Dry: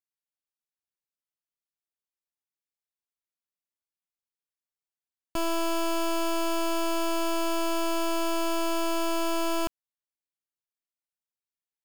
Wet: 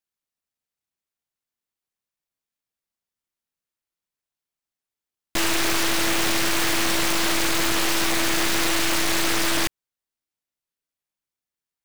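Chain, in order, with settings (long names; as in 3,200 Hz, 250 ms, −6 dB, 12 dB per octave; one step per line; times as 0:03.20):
short delay modulated by noise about 1,700 Hz, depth 0.44 ms
level +5.5 dB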